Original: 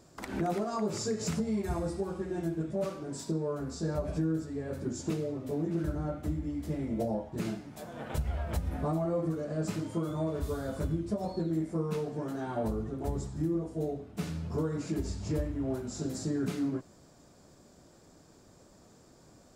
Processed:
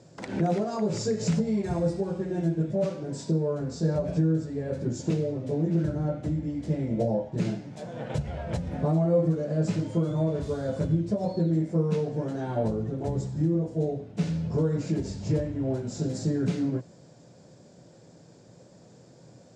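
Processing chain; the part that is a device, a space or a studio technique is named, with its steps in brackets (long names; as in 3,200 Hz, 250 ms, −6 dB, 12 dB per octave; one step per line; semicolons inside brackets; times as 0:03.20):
car door speaker (loudspeaker in its box 100–7,500 Hz, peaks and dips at 120 Hz +10 dB, 170 Hz +7 dB, 520 Hz +7 dB, 1,200 Hz −7 dB)
level +2.5 dB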